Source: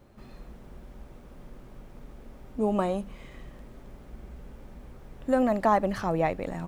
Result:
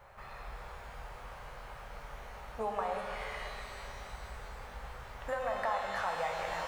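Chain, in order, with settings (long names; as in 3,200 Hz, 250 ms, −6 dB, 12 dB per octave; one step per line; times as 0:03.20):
drawn EQ curve 120 Hz 0 dB, 290 Hz −20 dB, 440 Hz +1 dB, 880 Hz +13 dB, 1,900 Hz +13 dB, 3,900 Hz +3 dB
downward compressor 6 to 1, threshold −30 dBFS, peak gain reduction 21.5 dB
reverb with rising layers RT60 2.9 s, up +12 semitones, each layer −8 dB, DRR 1 dB
level −4 dB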